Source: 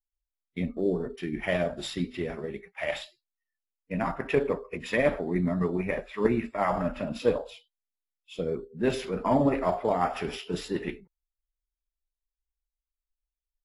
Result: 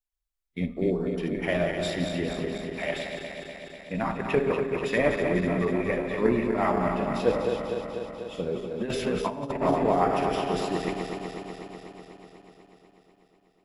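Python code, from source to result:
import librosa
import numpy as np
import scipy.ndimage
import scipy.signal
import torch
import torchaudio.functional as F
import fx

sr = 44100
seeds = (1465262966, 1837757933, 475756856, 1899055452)

y = fx.reverse_delay_fb(x, sr, ms=123, feedback_pct=83, wet_db=-6)
y = fx.over_compress(y, sr, threshold_db=-26.0, ratio=-0.5, at=(8.7, 9.61), fade=0.02)
y = fx.echo_feedback(y, sr, ms=87, feedback_pct=59, wet_db=-19)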